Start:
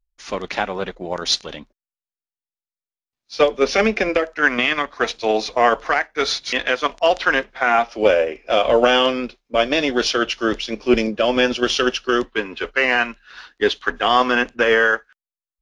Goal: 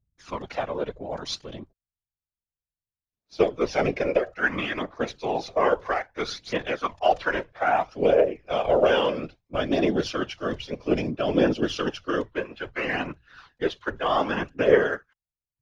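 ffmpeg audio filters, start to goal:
-af "tiltshelf=f=1200:g=5,aphaser=in_gain=1:out_gain=1:delay=2.2:decay=0.48:speed=0.61:type=triangular,afftfilt=real='hypot(re,im)*cos(2*PI*random(0))':imag='hypot(re,im)*sin(2*PI*random(1))':win_size=512:overlap=0.75,volume=0.668"

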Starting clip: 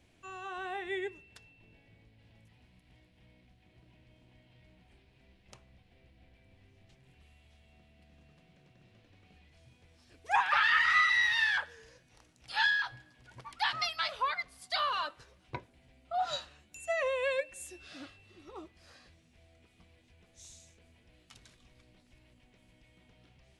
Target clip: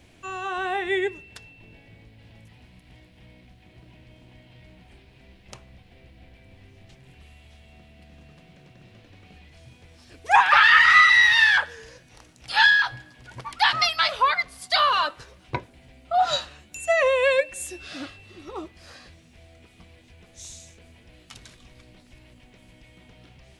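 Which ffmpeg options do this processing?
-af "acontrast=84,volume=1.68"

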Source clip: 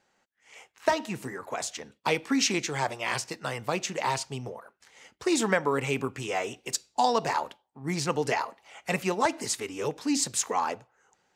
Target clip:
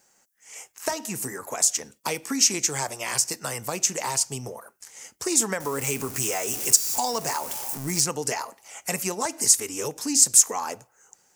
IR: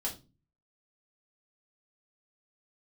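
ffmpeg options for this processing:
-filter_complex "[0:a]asettb=1/sr,asplit=3[s0][s1][s2];[s0]atrim=end=5.604[s3];[s1]atrim=start=5.6:end=8.01,asetpts=PTS-STARTPTS,afade=t=in:d=0.004:c=qsin,afade=t=out:st=2.406:d=0.004:c=qsin,aeval=exprs='val(0)+0.5*0.015*sgn(val(0))':c=same[s4];[s2]atrim=start=8.006[s5];[s3][s4]acrossfade=d=0.004:c1=hsin:c2=qsin[s6];[s6][s5]acrossfade=d=0.004:c1=qsin:c2=hsin,acompressor=threshold=0.0251:ratio=2,aexciter=amount=6.5:drive=4.8:freq=5300,volume=1.33"

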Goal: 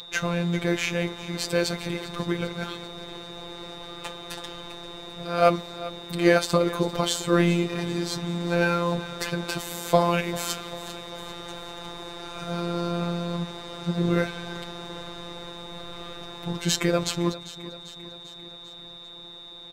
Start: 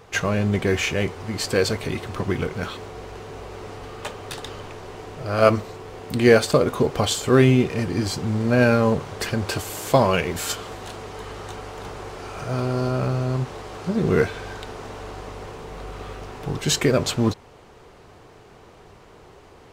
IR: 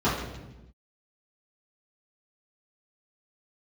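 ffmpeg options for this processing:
-af "aecho=1:1:395|790|1185|1580|1975:0.15|0.0868|0.0503|0.0292|0.0169,aeval=exprs='val(0)+0.0562*sin(2*PI*3700*n/s)':c=same,afftfilt=real='hypot(re,im)*cos(PI*b)':imag='0':win_size=1024:overlap=0.75"

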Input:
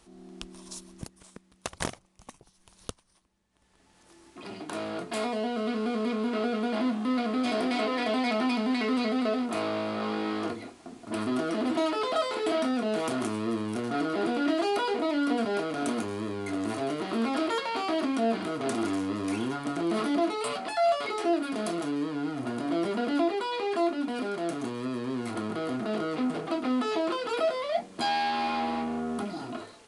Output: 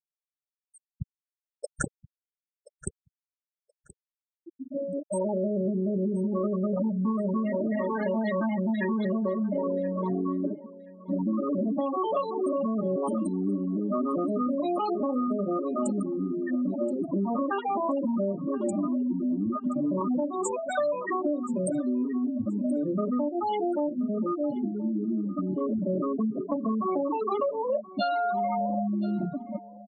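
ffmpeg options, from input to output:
-filter_complex "[0:a]aemphasis=mode=production:type=50fm,afftfilt=real='re*gte(hypot(re,im),0.1)':imag='im*gte(hypot(re,im),0.1)':win_size=1024:overlap=0.75,highshelf=f=2200:t=q:w=3:g=-6,acompressor=threshold=0.0282:ratio=12,asetrate=38170,aresample=44100,atempo=1.15535,asplit=2[s0][s1];[s1]aecho=0:1:1027|2054:0.119|0.0238[s2];[s0][s2]amix=inputs=2:normalize=0,volume=2.24"

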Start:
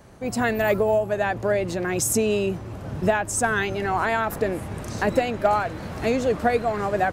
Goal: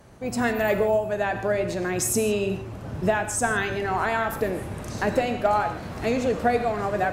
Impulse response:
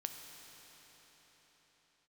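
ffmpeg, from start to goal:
-filter_complex "[1:a]atrim=start_sample=2205,atrim=end_sample=6174,asetrate=36162,aresample=44100[s0];[0:a][s0]afir=irnorm=-1:irlink=0"

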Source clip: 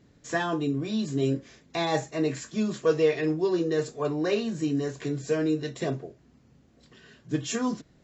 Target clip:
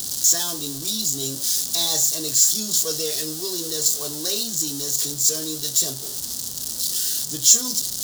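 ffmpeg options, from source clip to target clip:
-af "aeval=exprs='val(0)+0.5*0.0282*sgn(val(0))':c=same,aexciter=amount=14.6:drive=8.5:freq=3700,volume=0.355"

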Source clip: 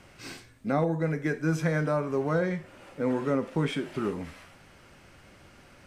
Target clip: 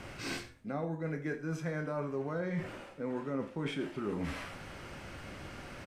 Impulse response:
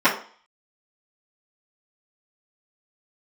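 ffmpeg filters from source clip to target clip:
-filter_complex "[0:a]highshelf=f=5400:g=-5.5,areverse,acompressor=threshold=0.00794:ratio=6,areverse,asplit=2[s0][s1];[s1]adelay=29,volume=0.299[s2];[s0][s2]amix=inputs=2:normalize=0,aecho=1:1:83:0.158,volume=2.37"

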